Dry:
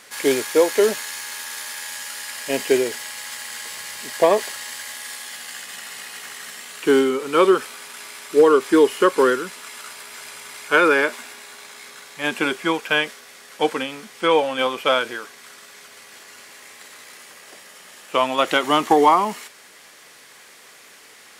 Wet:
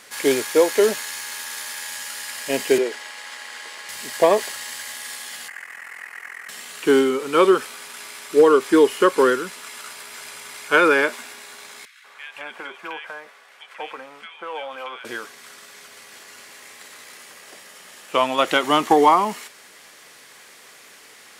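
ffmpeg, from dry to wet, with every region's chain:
-filter_complex "[0:a]asettb=1/sr,asplit=3[a][b][c];[a]atrim=end=2.784[d];[b]atrim=start=2.78:end=3.89,asetpts=PTS-STARTPTS,afade=t=in:d=0.004:c=qsin,afade=t=out:st=1.106:d=0.004:c=qsin,highpass=f=270:w=0.5412,highpass=f=270:w=1.3066,aemphasis=mode=reproduction:type=50fm[e];[c]atrim=start=3.886[f];[d][e]acrossfade=d=0.004:c1=hsin:c2=qsin[g];[g][f]acrossfade=d=0.004:c1=qsin:c2=hsin,asettb=1/sr,asplit=3[h][i][j];[h]atrim=end=5.484[k];[i]atrim=start=5.48:end=6.49,asetpts=PTS-STARTPTS,afade=t=in:d=0.004:c=qsin,afade=t=out:st=1.006:d=0.004:c=qsin,highpass=f=590:p=1,highshelf=f=2.7k:t=q:w=3:g=-10,aeval=exprs='val(0)*sin(2*PI*21*n/s)':c=same[l];[j]atrim=start=6.486[m];[k][l]acrossfade=d=0.004:c1=hsin:c2=qsin[n];[n][m]acrossfade=d=0.004:c1=qsin:c2=hsin,asettb=1/sr,asplit=3[o][p][q];[o]atrim=end=11.854[r];[p]atrim=start=11.85:end=15.05,asetpts=PTS-STARTPTS,afade=t=in:d=0.004:c=qsin,afade=t=out:st=3.196:d=0.004:c=qsin,acrossover=split=570 2800:gain=0.126 1 0.178[s][t][u];[s][t][u]amix=inputs=3:normalize=0,acompressor=threshold=-28dB:ratio=4:attack=3.2:release=140:knee=1:detection=peak,acrossover=split=1700[v][w];[v]adelay=190[x];[x][w]amix=inputs=2:normalize=0,atrim=end_sample=141120[y];[q]atrim=start=15.046[z];[r][y]acrossfade=d=0.004:c1=hsin:c2=qsin[aa];[aa][z]acrossfade=d=0.004:c1=qsin:c2=hsin"

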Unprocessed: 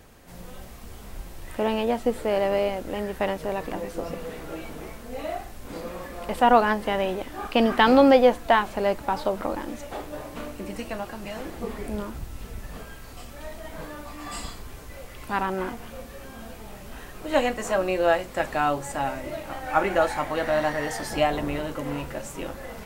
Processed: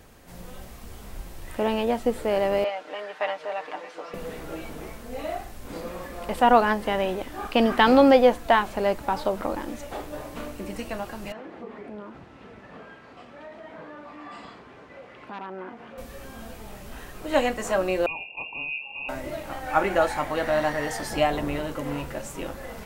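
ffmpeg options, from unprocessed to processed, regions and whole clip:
-filter_complex "[0:a]asettb=1/sr,asplit=3[a][b][c];[a]atrim=end=2.644[d];[b]atrim=start=2.64:end=4.14,asetpts=PTS-STARTPTS,afade=t=in:d=0.004:c=qsin,afade=t=out:st=1.496:d=0.004:c=qsin,highpass=720,lowpass=3.9k,aecho=1:1:6.6:0.73,atrim=end_sample=66150[e];[c]atrim=start=4.136[f];[d][e]acrossfade=d=0.004:c1=hsin:c2=qsin[g];[g][f]acrossfade=d=0.004:c1=qsin:c2=hsin,asettb=1/sr,asplit=3[h][i][j];[h]atrim=end=11.324[k];[i]atrim=start=11.32:end=15.98,asetpts=PTS-STARTPTS,afade=t=in:d=0.004:c=qsin,afade=t=out:st=4.656:d=0.004:c=qsin,aeval=exprs='0.112*(abs(mod(val(0)/0.112+3,4)-2)-1)':c=same,highpass=200,lowpass=2.4k,acompressor=threshold=-39dB:ratio=2:attack=3.2:release=140:knee=1:detection=peak[l];[j]atrim=start=15.976[m];[k][l]acrossfade=d=0.004:c1=hsin:c2=qsin[n];[n][m]acrossfade=d=0.004:c1=qsin:c2=hsin,asettb=1/sr,asplit=3[o][p][q];[o]atrim=end=18.064[r];[p]atrim=start=18.06:end=19.09,asetpts=PTS-STARTPTS,afade=t=in:d=0.004:c=qsin,afade=t=out:st=1.026:d=0.004:c=qsin,asuperstop=centerf=900:order=20:qfactor=0.62,lowpass=f=2.4k:t=q:w=0.5098,lowpass=f=2.4k:t=q:w=0.6013,lowpass=f=2.4k:t=q:w=0.9,lowpass=f=2.4k:t=q:w=2.563,afreqshift=-2800[s];[q]atrim=start=19.086[t];[r][s]acrossfade=d=0.004:c1=hsin:c2=qsin[u];[u][t]acrossfade=d=0.004:c1=qsin:c2=hsin"

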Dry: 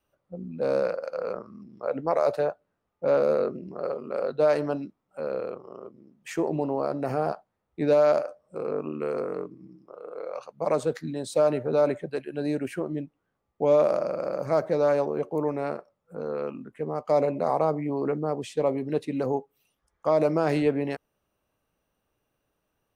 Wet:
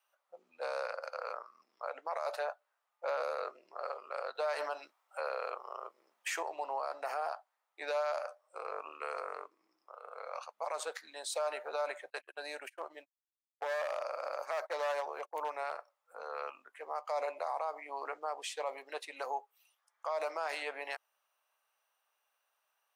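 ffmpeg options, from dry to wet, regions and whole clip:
-filter_complex "[0:a]asettb=1/sr,asplit=3[a][b][c];[a]atrim=end=4.354[d];[b]atrim=start=4.35:end=6.43,asetpts=PTS-STARTPTS,afade=t=in:d=0.004:c=qsin,afade=t=out:st=2.076:d=0.004:c=qsin,bandreject=f=270:w=8.6,acontrast=62[e];[c]atrim=start=6.426[f];[d][e]acrossfade=d=0.004:c1=hsin:c2=qsin[g];[g][f]acrossfade=d=0.004:c1=qsin:c2=hsin,asettb=1/sr,asplit=3[h][i][j];[h]atrim=end=12.104[k];[i]atrim=start=12.1:end=15.72,asetpts=PTS-STARTPTS,afade=t=in:d=0.004:c=qsin,afade=t=out:st=3.616:d=0.004:c=qsin,agate=range=-32dB:threshold=-35dB:ratio=16:release=100:detection=peak,volume=18.5dB,asoftclip=hard,volume=-18.5dB[l];[j]atrim=start=15.716[m];[k][l]acrossfade=d=0.004:c1=hsin:c2=qsin[n];[n][m]acrossfade=d=0.004:c1=qsin:c2=hsin,highpass=f=760:w=0.5412,highpass=f=760:w=1.3066,alimiter=level_in=3.5dB:limit=-24dB:level=0:latency=1:release=68,volume=-3.5dB,volume=1dB"

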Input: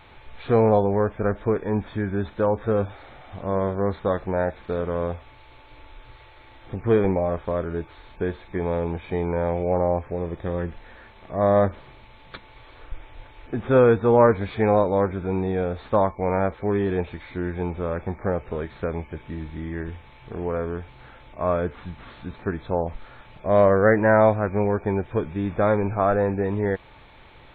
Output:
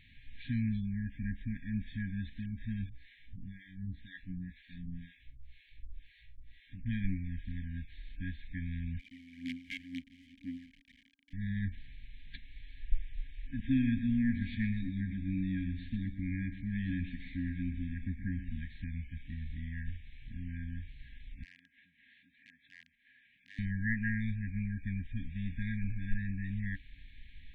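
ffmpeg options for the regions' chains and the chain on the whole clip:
-filter_complex "[0:a]asettb=1/sr,asplit=3[a][b][c];[a]atrim=end=2.894[d];[b]atrim=start=2.89:end=6.86,asetpts=PTS-STARTPTS,afade=t=in:d=0.004:c=qsin,afade=t=out:st=3.966:d=0.004:c=qsin,asplit=2[e][f];[f]adelay=17,volume=-5.5dB[g];[e][g]amix=inputs=2:normalize=0,atrim=end_sample=175077,acrossover=split=490[h][i];[h]aeval=exprs='val(0)*(1-1/2+1/2*cos(2*PI*2*n/s))':c=same[j];[i]aeval=exprs='val(0)*(1-1/2-1/2*cos(2*PI*2*n/s))':c=same[k];[j][k]amix=inputs=2:normalize=0[l];[c]atrim=start=6.856[m];[d][l]acrossfade=d=0.004:c1=hsin:c2=qsin[n];[n][m]acrossfade=d=0.004:c1=qsin:c2=hsin,asettb=1/sr,asplit=3[o][p][q];[o]atrim=end=8.994[r];[p]atrim=start=8.99:end=11.33,asetpts=PTS-STARTPTS,afade=t=in:d=0.004:c=qsin,afade=t=out:st=2.336:d=0.004:c=qsin,aphaser=in_gain=1:out_gain=1:delay=1.9:decay=0.73:speed=2:type=sinusoidal,acrusher=bits=3:dc=4:mix=0:aa=0.000001,asplit=3[s][t][u];[s]bandpass=f=270:t=q:w=8,volume=0dB[v];[t]bandpass=f=2.29k:t=q:w=8,volume=-6dB[w];[u]bandpass=f=3.01k:t=q:w=8,volume=-9dB[x];[v][w][x]amix=inputs=3:normalize=0[y];[q]atrim=start=11.326[z];[r][y]acrossfade=d=0.004:c1=hsin:c2=qsin[aa];[aa][z]acrossfade=d=0.004:c1=qsin:c2=hsin,asettb=1/sr,asplit=3[ab][ac][ad];[ab]atrim=end=13.594[ae];[ac]atrim=start=13.59:end=18.61,asetpts=PTS-STARTPTS,afade=t=in:d=0.004:c=qsin,afade=t=out:st=5.016:d=0.004:c=qsin,equalizer=f=320:w=1.6:g=9.5,aecho=1:1:122|244|366|488:0.266|0.114|0.0492|0.0212,atrim=end_sample=221382[af];[ad]atrim=start=18.606[ag];[ae][af]acrossfade=d=0.004:c1=hsin:c2=qsin[ah];[ah][ag]acrossfade=d=0.004:c1=qsin:c2=hsin,asettb=1/sr,asplit=3[ai][aj][ak];[ai]atrim=end=21.434[al];[aj]atrim=start=21.43:end=23.59,asetpts=PTS-STARTPTS,afade=t=in:d=0.004:c=qsin,afade=t=out:st=2.156:d=0.004:c=qsin,acompressor=threshold=-41dB:ratio=3:attack=3.2:release=140:knee=1:detection=peak,aeval=exprs='(mod(37.6*val(0)+1,2)-1)/37.6':c=same,highpass=490,lowpass=2.3k[am];[ak]atrim=start=23.586[an];[al][am]acrossfade=d=0.004:c1=hsin:c2=qsin[ao];[ao][an]acrossfade=d=0.004:c1=qsin:c2=hsin,afftfilt=real='re*(1-between(b*sr/4096,280,1600))':imag='im*(1-between(b*sr/4096,280,1600))':win_size=4096:overlap=0.75,asubboost=boost=5.5:cutoff=53,volume=-8dB"

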